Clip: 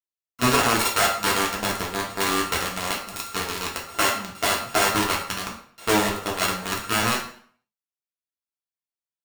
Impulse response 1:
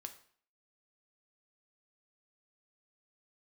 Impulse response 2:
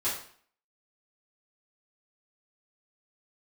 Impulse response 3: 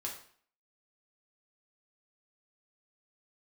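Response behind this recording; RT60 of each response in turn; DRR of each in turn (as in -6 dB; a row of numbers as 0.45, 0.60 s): 3; 0.55, 0.55, 0.55 s; 6.0, -12.0, -2.5 dB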